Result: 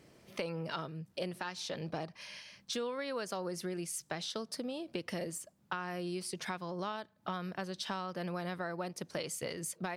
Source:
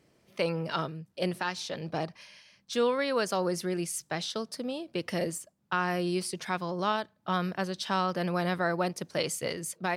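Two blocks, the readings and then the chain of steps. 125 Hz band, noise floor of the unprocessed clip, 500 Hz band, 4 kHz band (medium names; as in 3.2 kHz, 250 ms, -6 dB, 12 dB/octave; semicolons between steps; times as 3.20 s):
-7.5 dB, -71 dBFS, -8.5 dB, -6.0 dB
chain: compression 5:1, threshold -42 dBFS, peak gain reduction 17 dB; trim +5 dB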